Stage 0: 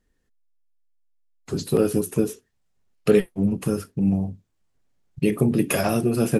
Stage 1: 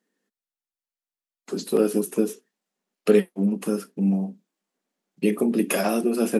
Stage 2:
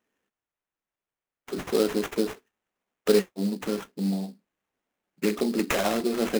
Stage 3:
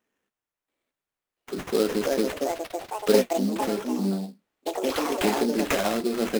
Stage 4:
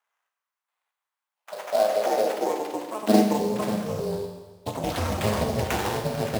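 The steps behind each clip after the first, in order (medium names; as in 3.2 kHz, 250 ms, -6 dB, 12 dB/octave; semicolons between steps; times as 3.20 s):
elliptic high-pass 190 Hz, stop band 40 dB
bass shelf 320 Hz -7.5 dB; sample-rate reducer 4.6 kHz, jitter 20%
ever faster or slower copies 683 ms, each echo +4 st, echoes 3
ring modulator 210 Hz; Schroeder reverb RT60 1.3 s, combs from 30 ms, DRR 4.5 dB; high-pass sweep 1 kHz -> 82 Hz, 1.17–4.73 s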